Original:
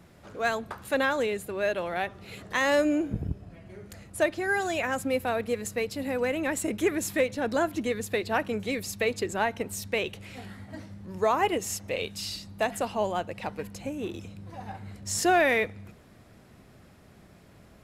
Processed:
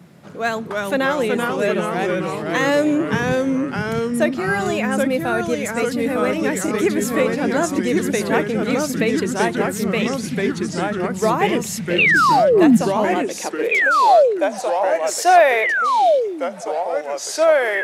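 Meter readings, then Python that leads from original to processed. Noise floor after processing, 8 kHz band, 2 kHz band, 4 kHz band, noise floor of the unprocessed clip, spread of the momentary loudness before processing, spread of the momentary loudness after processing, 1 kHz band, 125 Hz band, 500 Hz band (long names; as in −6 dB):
−30 dBFS, +7.5 dB, +10.5 dB, +8.0 dB, −55 dBFS, 18 LU, 10 LU, +13.0 dB, +11.5 dB, +11.0 dB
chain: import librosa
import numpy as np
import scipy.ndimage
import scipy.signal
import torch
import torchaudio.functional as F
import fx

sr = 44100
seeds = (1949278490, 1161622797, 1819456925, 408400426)

y = fx.spec_paint(x, sr, seeds[0], shape='fall', start_s=11.98, length_s=0.79, low_hz=210.0, high_hz=2900.0, level_db=-19.0)
y = fx.echo_pitch(y, sr, ms=262, semitones=-2, count=3, db_per_echo=-3.0)
y = fx.filter_sweep_highpass(y, sr, from_hz=160.0, to_hz=620.0, start_s=12.81, end_s=13.96, q=2.3)
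y = y * librosa.db_to_amplitude(5.0)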